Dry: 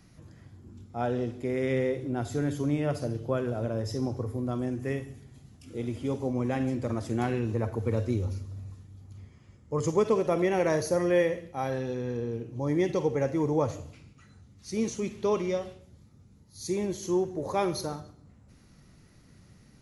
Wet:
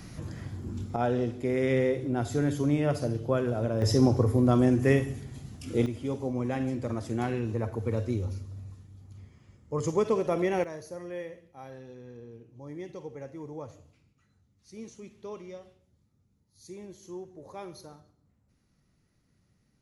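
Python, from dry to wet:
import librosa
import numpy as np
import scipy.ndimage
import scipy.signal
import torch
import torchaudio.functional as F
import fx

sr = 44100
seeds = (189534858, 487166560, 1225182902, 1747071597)

y = fx.gain(x, sr, db=fx.steps((0.0, 12.0), (0.96, 2.0), (3.82, 9.0), (5.86, -1.5), (10.64, -14.0)))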